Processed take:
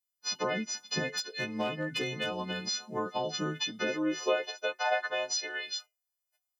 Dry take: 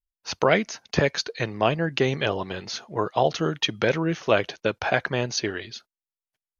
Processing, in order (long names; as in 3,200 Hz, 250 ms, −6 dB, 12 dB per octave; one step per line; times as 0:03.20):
every partial snapped to a pitch grid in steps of 3 semitones
downward compressor 4 to 1, threshold −27 dBFS, peak gain reduction 13 dB
flanger 0.42 Hz, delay 9.3 ms, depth 1.1 ms, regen −73%
0:01.06–0:02.66: asymmetric clip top −27.5 dBFS
high-pass filter sweep 190 Hz → 650 Hz, 0:03.66–0:04.65